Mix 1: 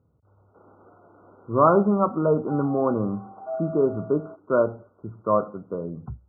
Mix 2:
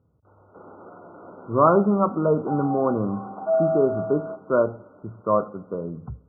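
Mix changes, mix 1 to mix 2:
background +5.5 dB; reverb: on, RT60 1.9 s

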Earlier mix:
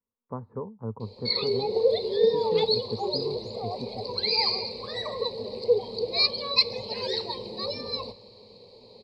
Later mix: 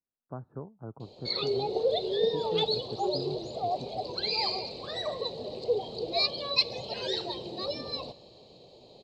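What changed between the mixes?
speech -4.5 dB; master: remove rippled EQ curve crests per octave 0.91, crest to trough 13 dB

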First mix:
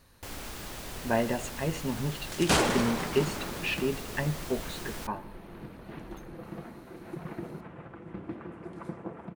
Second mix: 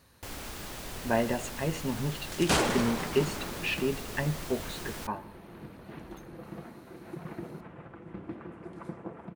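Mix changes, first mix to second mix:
speech: add high-pass 57 Hz; second sound: send -9.0 dB

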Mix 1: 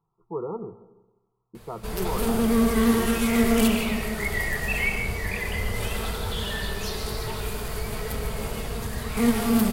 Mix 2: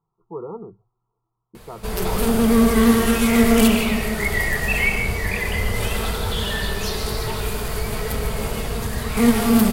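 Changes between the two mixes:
speech: send off; background +5.5 dB

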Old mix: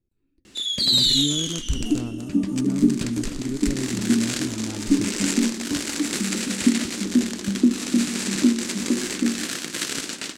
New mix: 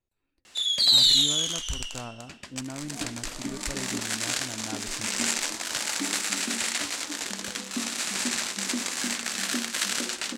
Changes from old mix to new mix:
speech +4.0 dB; second sound: entry +1.10 s; master: add resonant low shelf 470 Hz -13 dB, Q 1.5

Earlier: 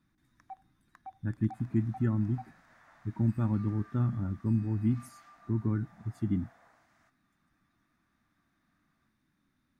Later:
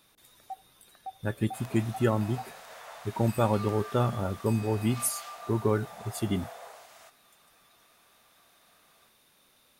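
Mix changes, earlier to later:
first sound: add boxcar filter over 45 samples; master: remove FFT filter 310 Hz 0 dB, 440 Hz -23 dB, 1.8 kHz -9 dB, 2.9 kHz -23 dB, 5.9 kHz -20 dB, 11 kHz -28 dB

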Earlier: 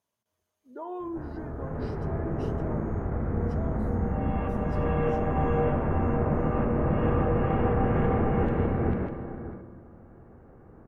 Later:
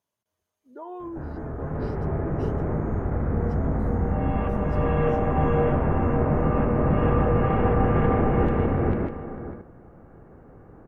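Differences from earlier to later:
background +5.5 dB; reverb: off

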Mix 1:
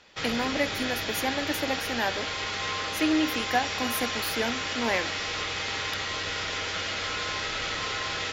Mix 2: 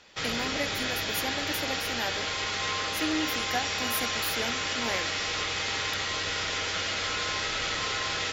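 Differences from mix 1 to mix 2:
speech -6.0 dB; master: add treble shelf 8.8 kHz +10 dB

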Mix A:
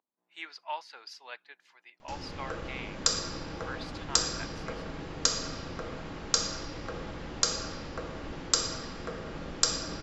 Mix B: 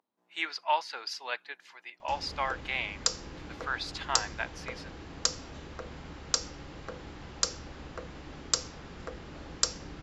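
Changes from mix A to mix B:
speech +9.0 dB; reverb: off

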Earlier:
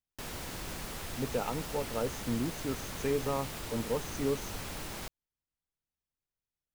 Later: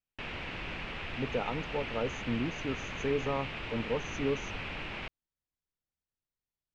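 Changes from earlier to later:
background: add resonant low-pass 2.6 kHz, resonance Q 3.3; master: add Bessel low-pass 6.5 kHz, order 2

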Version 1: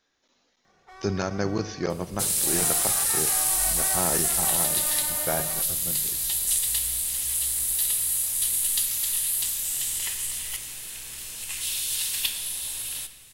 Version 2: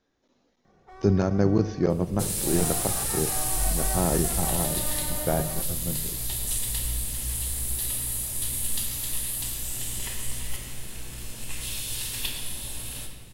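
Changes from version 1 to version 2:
second sound: send +9.5 dB; master: add tilt shelf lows +8 dB, about 810 Hz

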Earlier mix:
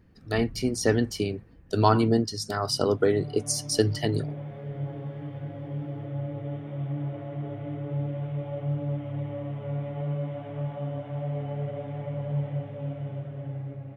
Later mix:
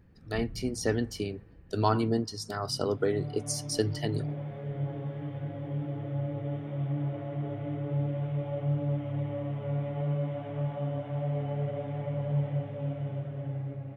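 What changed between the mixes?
speech -6.0 dB; reverb: on, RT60 2.1 s

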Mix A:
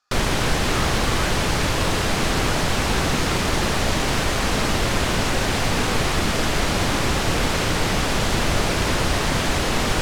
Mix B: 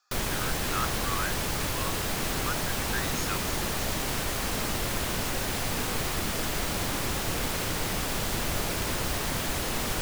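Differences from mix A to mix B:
background -10.0 dB; master: remove distance through air 55 m

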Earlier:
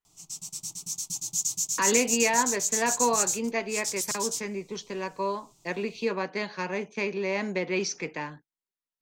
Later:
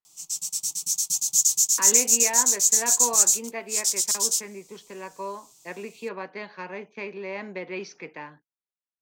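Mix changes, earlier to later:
speech: add tape spacing loss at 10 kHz 37 dB; master: add tilt EQ +3 dB/octave

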